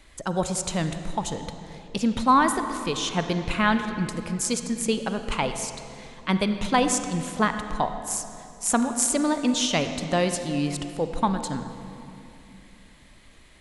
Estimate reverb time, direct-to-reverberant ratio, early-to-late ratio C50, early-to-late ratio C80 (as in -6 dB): 2.8 s, 7.5 dB, 8.0 dB, 8.5 dB